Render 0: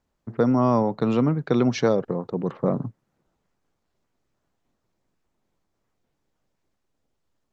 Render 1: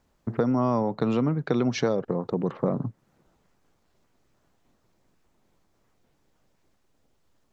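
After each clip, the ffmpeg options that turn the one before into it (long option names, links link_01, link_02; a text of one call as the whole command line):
ffmpeg -i in.wav -af "acompressor=threshold=-34dB:ratio=2.5,volume=7.5dB" out.wav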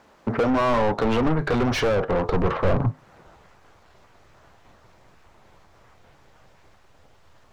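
ffmpeg -i in.wav -filter_complex "[0:a]flanger=delay=9:depth=1.5:regen=-72:speed=1.1:shape=triangular,asplit=2[link_01][link_02];[link_02]highpass=frequency=720:poles=1,volume=30dB,asoftclip=type=tanh:threshold=-15dB[link_03];[link_01][link_03]amix=inputs=2:normalize=0,lowpass=frequency=1700:poles=1,volume=-6dB,asubboost=boost=10:cutoff=83,volume=2.5dB" out.wav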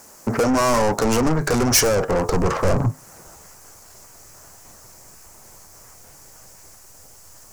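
ffmpeg -i in.wav -filter_complex "[0:a]asplit=2[link_01][link_02];[link_02]asoftclip=type=tanh:threshold=-22.5dB,volume=-5dB[link_03];[link_01][link_03]amix=inputs=2:normalize=0,aexciter=amount=7.1:drive=9.3:freq=5400" out.wav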